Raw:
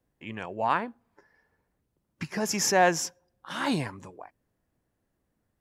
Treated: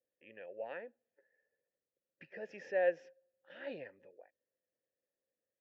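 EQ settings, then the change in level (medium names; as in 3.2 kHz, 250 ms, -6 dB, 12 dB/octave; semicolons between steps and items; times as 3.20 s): vowel filter e; distance through air 300 m; peaking EQ 6.7 kHz +5.5 dB 1.2 oct; -2.0 dB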